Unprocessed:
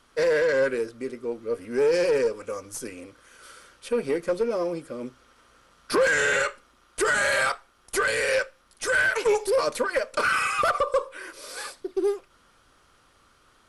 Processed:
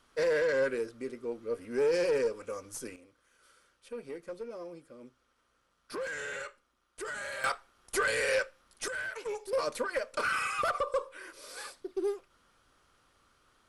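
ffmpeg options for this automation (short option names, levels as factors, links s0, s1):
-af "asetnsamples=n=441:p=0,asendcmd='2.96 volume volume -16dB;7.44 volume volume -5dB;8.88 volume volume -15dB;9.53 volume volume -7.5dB',volume=0.501"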